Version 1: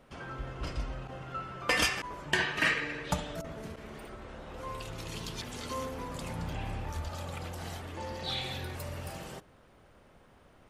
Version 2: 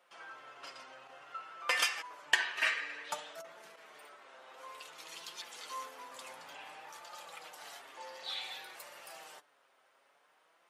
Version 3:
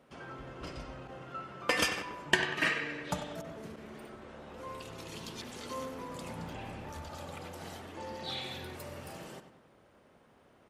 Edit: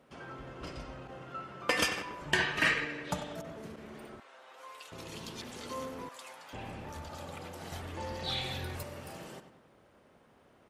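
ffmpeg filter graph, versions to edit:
-filter_complex "[0:a]asplit=2[a][b];[1:a]asplit=2[c][d];[2:a]asplit=5[e][f][g][h][i];[e]atrim=end=2.212[j];[a]atrim=start=2.208:end=2.852[k];[f]atrim=start=2.848:end=4.202[l];[c]atrim=start=4.198:end=4.922[m];[g]atrim=start=4.918:end=6.092[n];[d]atrim=start=6.088:end=6.532[o];[h]atrim=start=6.528:end=7.722[p];[b]atrim=start=7.718:end=8.832[q];[i]atrim=start=8.828[r];[j][k]acrossfade=d=0.004:c1=hsin:c2=hsin[s];[s][l]acrossfade=d=0.004:c1=hsin:c2=hsin[t];[t][m]acrossfade=d=0.004:c1=hsin:c2=hsin[u];[u][n]acrossfade=d=0.004:c1=hsin:c2=hsin[v];[v][o]acrossfade=d=0.004:c1=hsin:c2=hsin[w];[w][p]acrossfade=d=0.004:c1=hsin:c2=hsin[x];[x][q]acrossfade=d=0.004:c1=hsin:c2=hsin[y];[y][r]acrossfade=d=0.004:c1=hsin:c2=hsin"

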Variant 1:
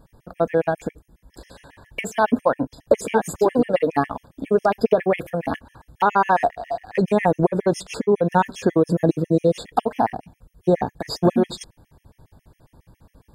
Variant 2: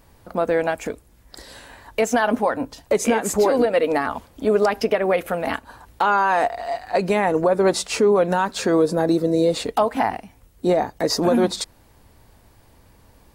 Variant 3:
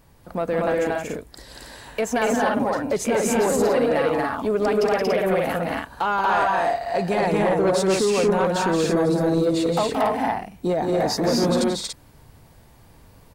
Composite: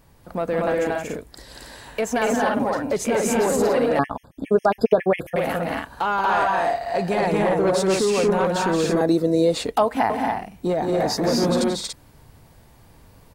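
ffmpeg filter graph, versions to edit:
-filter_complex "[2:a]asplit=3[a][b][c];[a]atrim=end=3.992[d];[0:a]atrim=start=3.988:end=5.362[e];[b]atrim=start=5.358:end=9.012[f];[1:a]atrim=start=9.008:end=10.102[g];[c]atrim=start=10.098[h];[d][e]acrossfade=d=0.004:c1=hsin:c2=hsin[i];[i][f]acrossfade=d=0.004:c1=hsin:c2=hsin[j];[j][g]acrossfade=d=0.004:c1=hsin:c2=hsin[k];[k][h]acrossfade=d=0.004:c1=hsin:c2=hsin"

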